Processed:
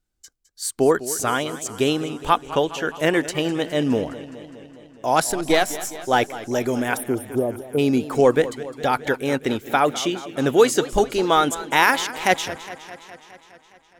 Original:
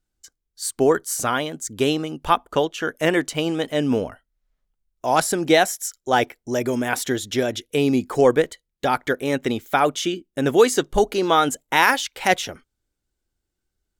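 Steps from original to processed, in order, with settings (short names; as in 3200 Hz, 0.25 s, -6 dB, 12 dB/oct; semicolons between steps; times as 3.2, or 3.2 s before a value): 5.3–5.97 half-wave gain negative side -7 dB; 6.97–7.79 spectral delete 1300–8600 Hz; warbling echo 0.207 s, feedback 68%, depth 122 cents, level -15.5 dB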